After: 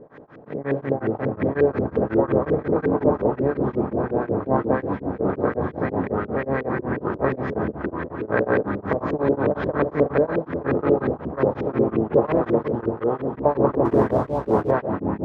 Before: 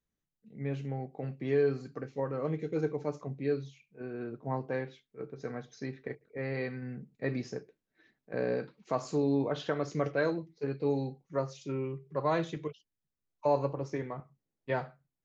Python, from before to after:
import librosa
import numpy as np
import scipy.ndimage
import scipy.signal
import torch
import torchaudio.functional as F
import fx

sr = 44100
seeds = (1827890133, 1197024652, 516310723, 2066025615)

y = fx.bin_compress(x, sr, power=0.4)
y = fx.echo_pitch(y, sr, ms=200, semitones=-4, count=3, db_per_echo=-3.0)
y = y + 10.0 ** (-12.5 / 20.0) * np.pad(y, (int(839 * sr / 1000.0), 0))[:len(y)]
y = fx.filter_lfo_lowpass(y, sr, shape='saw_up', hz=5.6, low_hz=380.0, high_hz=2300.0, q=2.1)
y = fx.leveller(y, sr, passes=1, at=(13.85, 14.71))
y = y * np.abs(np.cos(np.pi * 5.5 * np.arange(len(y)) / sr))
y = y * 10.0 ** (3.5 / 20.0)